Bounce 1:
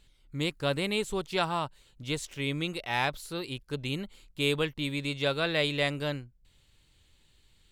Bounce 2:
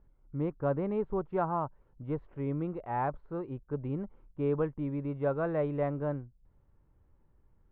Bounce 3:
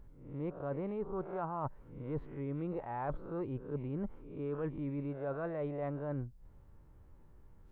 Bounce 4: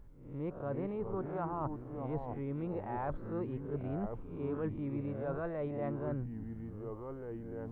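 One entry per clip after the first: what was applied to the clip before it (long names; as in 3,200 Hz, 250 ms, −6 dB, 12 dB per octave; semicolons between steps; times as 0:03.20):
low-pass filter 1,200 Hz 24 dB per octave
peak hold with a rise ahead of every peak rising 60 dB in 0.40 s; reversed playback; downward compressor 12 to 1, threshold −40 dBFS, peak gain reduction 16.5 dB; reversed playback; level +5.5 dB
delay with pitch and tempo change per echo 234 ms, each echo −4 semitones, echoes 2, each echo −6 dB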